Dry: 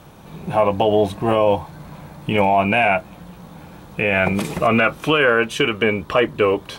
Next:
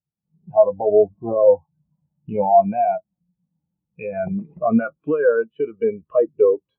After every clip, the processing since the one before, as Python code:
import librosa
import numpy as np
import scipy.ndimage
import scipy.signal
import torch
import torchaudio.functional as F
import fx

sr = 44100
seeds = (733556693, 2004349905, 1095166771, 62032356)

y = fx.env_lowpass_down(x, sr, base_hz=1700.0, full_db=-14.5)
y = fx.spectral_expand(y, sr, expansion=2.5)
y = y * 10.0 ** (1.5 / 20.0)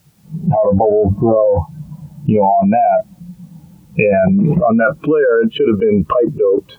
y = fx.env_flatten(x, sr, amount_pct=100)
y = y * 10.0 ** (-3.0 / 20.0)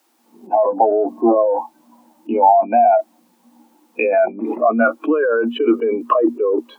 y = scipy.signal.sosfilt(scipy.signal.cheby1(6, 9, 230.0, 'highpass', fs=sr, output='sos'), x)
y = y * 10.0 ** (3.5 / 20.0)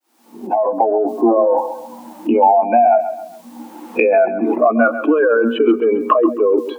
y = fx.fade_in_head(x, sr, length_s=1.55)
y = fx.echo_feedback(y, sr, ms=134, feedback_pct=29, wet_db=-13.0)
y = fx.band_squash(y, sr, depth_pct=70)
y = y * 10.0 ** (2.0 / 20.0)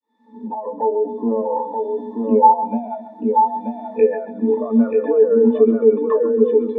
y = fx.octave_resonator(x, sr, note='A', decay_s=0.15)
y = y + 10.0 ** (-4.0 / 20.0) * np.pad(y, (int(932 * sr / 1000.0), 0))[:len(y)]
y = y * 10.0 ** (7.5 / 20.0)